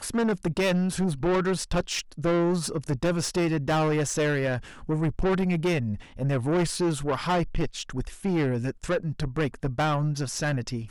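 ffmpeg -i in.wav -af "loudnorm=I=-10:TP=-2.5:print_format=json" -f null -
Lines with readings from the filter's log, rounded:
"input_i" : "-27.2",
"input_tp" : "-19.2",
"input_lra" : "2.4",
"input_thresh" : "-37.2",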